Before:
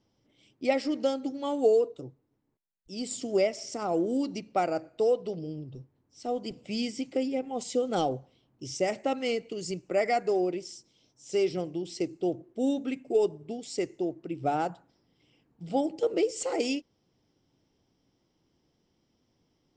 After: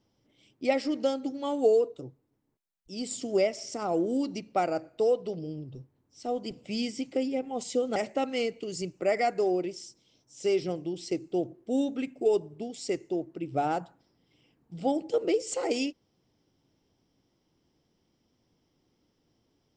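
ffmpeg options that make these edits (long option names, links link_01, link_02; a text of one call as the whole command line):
ffmpeg -i in.wav -filter_complex "[0:a]asplit=2[link_01][link_02];[link_01]atrim=end=7.962[link_03];[link_02]atrim=start=8.848[link_04];[link_03][link_04]acrossfade=duration=0.004:curve1=hsin:curve2=hsin" out.wav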